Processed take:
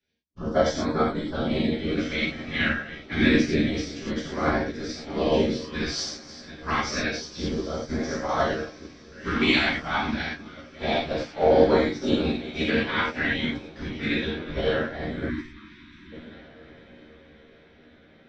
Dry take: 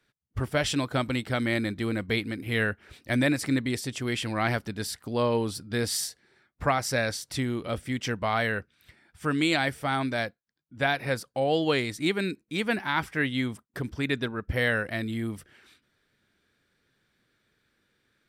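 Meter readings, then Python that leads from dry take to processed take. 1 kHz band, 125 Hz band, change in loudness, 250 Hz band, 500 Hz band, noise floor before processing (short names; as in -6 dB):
+2.0 dB, -1.5 dB, +2.5 dB, +3.5 dB, +4.5 dB, -76 dBFS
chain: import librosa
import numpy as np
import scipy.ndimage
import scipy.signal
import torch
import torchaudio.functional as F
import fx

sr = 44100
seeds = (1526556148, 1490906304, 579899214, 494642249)

p1 = fx.reverse_delay(x, sr, ms=681, wet_db=-10.5)
p2 = scipy.signal.sosfilt(scipy.signal.ellip(4, 1.0, 60, 5900.0, 'lowpass', fs=sr, output='sos'), p1)
p3 = fx.peak_eq(p2, sr, hz=100.0, db=-8.0, octaves=0.55)
p4 = fx.whisperise(p3, sr, seeds[0])
p5 = fx.filter_lfo_notch(p4, sr, shape='sine', hz=0.28, low_hz=440.0, high_hz=2900.0, q=0.8)
p6 = p5 + fx.echo_diffused(p5, sr, ms=1625, feedback_pct=46, wet_db=-14.5, dry=0)
p7 = fx.rev_gated(p6, sr, seeds[1], gate_ms=130, shape='flat', drr_db=-5.0)
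p8 = fx.spec_erase(p7, sr, start_s=15.29, length_s=0.83, low_hz=370.0, high_hz=920.0)
p9 = fx.doubler(p8, sr, ms=13.0, db=-3.0)
y = fx.upward_expand(p9, sr, threshold_db=-34.0, expansion=1.5)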